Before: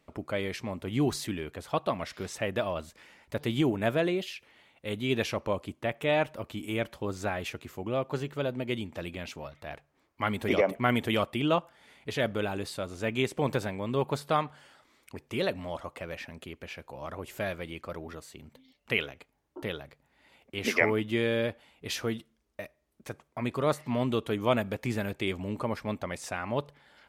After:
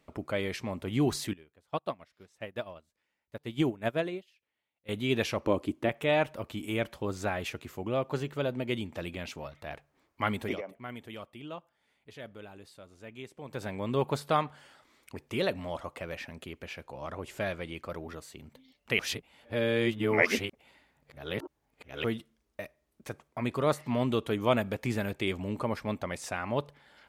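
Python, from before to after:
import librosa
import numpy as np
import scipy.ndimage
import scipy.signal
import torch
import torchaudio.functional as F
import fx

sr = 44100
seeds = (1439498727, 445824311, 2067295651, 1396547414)

y = fx.upward_expand(x, sr, threshold_db=-40.0, expansion=2.5, at=(1.33, 4.89))
y = fx.peak_eq(y, sr, hz=310.0, db=10.5, octaves=0.77, at=(5.44, 5.89))
y = fx.lowpass(y, sr, hz=10000.0, slope=12, at=(16.84, 17.74))
y = fx.edit(y, sr, fx.fade_down_up(start_s=10.22, length_s=3.67, db=-16.0, fade_s=0.39, curve='qsin'),
    fx.reverse_span(start_s=18.99, length_s=3.05), tone=tone)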